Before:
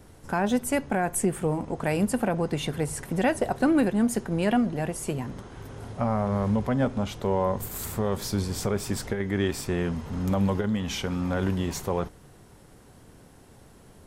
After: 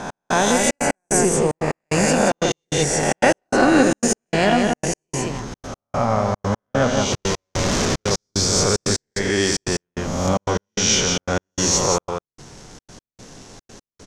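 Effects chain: spectral swells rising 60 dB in 1.23 s; dynamic EQ 220 Hz, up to -5 dB, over -35 dBFS, Q 1.4; crackle 420/s -44 dBFS; bell 75 Hz -6 dB 1 oct; 7.12–8.11 Schmitt trigger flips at -28 dBFS; synth low-pass 6200 Hz, resonance Q 3.6; echo 0.177 s -4.5 dB; step gate "x..xxxx." 149 bpm -60 dB; gain +6 dB

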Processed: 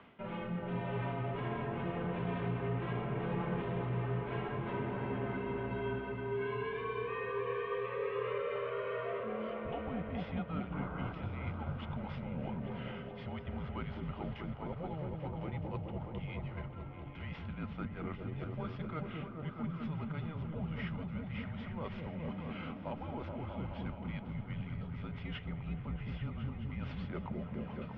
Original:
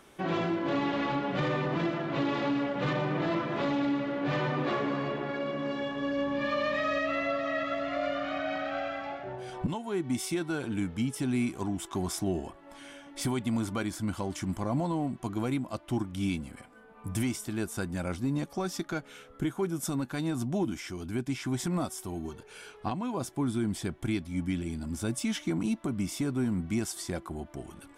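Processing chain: CVSD 64 kbps; notch 1900 Hz, Q 19; reverse; compressor 6:1, threshold -38 dBFS, peak gain reduction 12 dB; reverse; mistuned SSB -160 Hz 270–3200 Hz; painted sound noise, 10.72–11.13, 240–1600 Hz -47 dBFS; on a send: repeats that get brighter 0.211 s, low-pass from 400 Hz, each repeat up 1 oct, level 0 dB; on the sum: gain +1 dB

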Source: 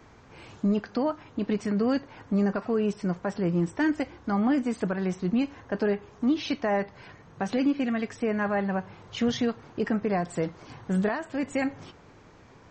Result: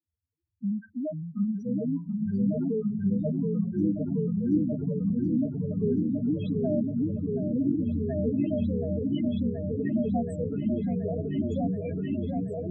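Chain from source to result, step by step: gate -38 dBFS, range -34 dB; HPF 45 Hz 12 dB/oct; loudest bins only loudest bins 1; in parallel at -2.5 dB: compressor, threshold -37 dBFS, peak gain reduction 11.5 dB; on the sum: echoes that change speed 0.325 s, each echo -4 st, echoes 3, each echo -6 dB; resonant low shelf 100 Hz +6.5 dB, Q 3; repeats that get brighter 0.727 s, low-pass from 400 Hz, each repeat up 2 oct, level 0 dB

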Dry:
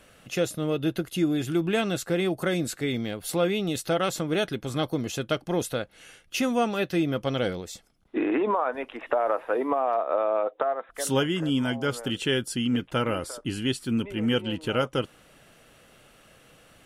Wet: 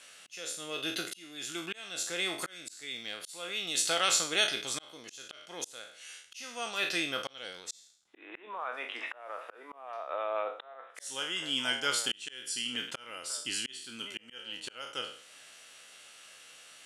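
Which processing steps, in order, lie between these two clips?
spectral trails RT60 0.45 s; weighting filter ITU-R 468; auto swell 0.656 s; gain -4.5 dB

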